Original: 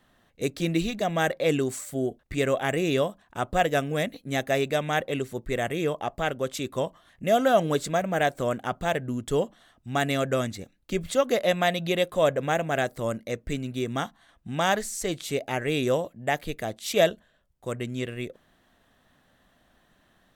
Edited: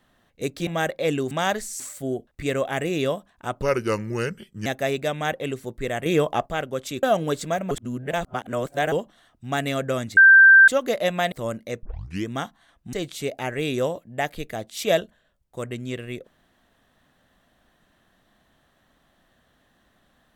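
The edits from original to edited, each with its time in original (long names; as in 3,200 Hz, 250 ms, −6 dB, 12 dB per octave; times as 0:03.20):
0:00.67–0:01.08: remove
0:03.54–0:04.34: play speed 77%
0:05.74–0:06.14: clip gain +6.5 dB
0:06.71–0:07.46: remove
0:08.14–0:09.35: reverse
0:10.60–0:11.11: beep over 1,570 Hz −7.5 dBFS
0:11.75–0:12.92: remove
0:13.43: tape start 0.45 s
0:14.53–0:15.02: move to 0:01.72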